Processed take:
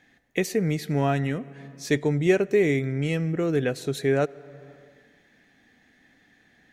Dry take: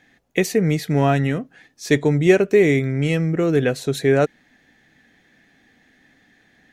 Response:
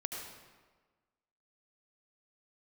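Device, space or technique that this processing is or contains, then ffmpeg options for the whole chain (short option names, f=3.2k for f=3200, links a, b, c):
ducked reverb: -filter_complex "[0:a]asplit=3[a][b][c];[1:a]atrim=start_sample=2205[d];[b][d]afir=irnorm=-1:irlink=0[e];[c]apad=whole_len=296427[f];[e][f]sidechaincompress=threshold=-30dB:ratio=12:attack=16:release=407,volume=-6dB[g];[a][g]amix=inputs=2:normalize=0,volume=-6.5dB"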